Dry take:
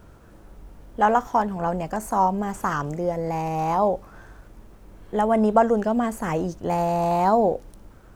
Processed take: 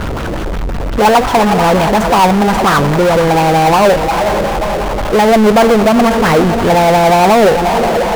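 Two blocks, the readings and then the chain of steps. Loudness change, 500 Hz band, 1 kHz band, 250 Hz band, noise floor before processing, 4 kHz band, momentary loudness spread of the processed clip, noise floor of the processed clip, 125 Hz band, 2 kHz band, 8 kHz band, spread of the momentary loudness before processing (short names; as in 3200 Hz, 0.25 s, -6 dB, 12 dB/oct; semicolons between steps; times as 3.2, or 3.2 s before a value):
+12.5 dB, +14.0 dB, +12.5 dB, +13.5 dB, -49 dBFS, +26.5 dB, 9 LU, -18 dBFS, +15.0 dB, +18.5 dB, +18.5 dB, 8 LU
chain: diffused feedback echo 0.462 s, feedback 42%, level -13.5 dB; LFO low-pass sine 5.6 Hz 450–3600 Hz; power-law curve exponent 0.35; gain +1 dB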